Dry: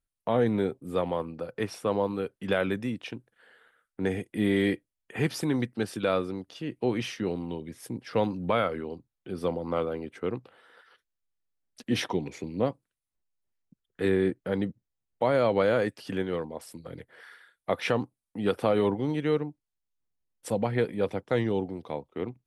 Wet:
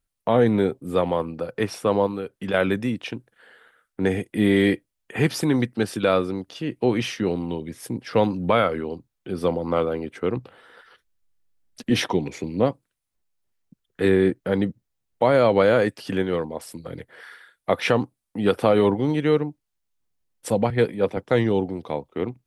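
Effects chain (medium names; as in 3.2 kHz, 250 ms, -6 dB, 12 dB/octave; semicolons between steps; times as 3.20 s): 2.06–2.54 s: compression 4:1, threshold -33 dBFS, peak gain reduction 10 dB; 10.36–11.90 s: bass shelf 180 Hz +8.5 dB; 20.70–21.17 s: three bands expanded up and down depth 100%; trim +6.5 dB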